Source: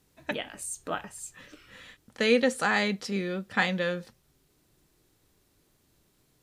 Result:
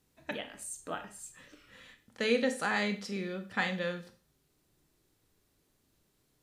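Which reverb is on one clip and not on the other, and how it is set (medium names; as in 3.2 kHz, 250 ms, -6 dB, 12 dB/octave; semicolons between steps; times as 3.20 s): Schroeder reverb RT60 0.38 s, combs from 27 ms, DRR 8.5 dB; trim -6 dB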